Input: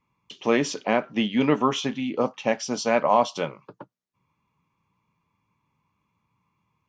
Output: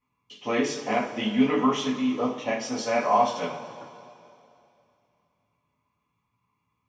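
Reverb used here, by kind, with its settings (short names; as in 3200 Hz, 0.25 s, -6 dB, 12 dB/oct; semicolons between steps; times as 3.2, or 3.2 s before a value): two-slope reverb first 0.34 s, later 2.7 s, from -17 dB, DRR -7 dB; gain -10 dB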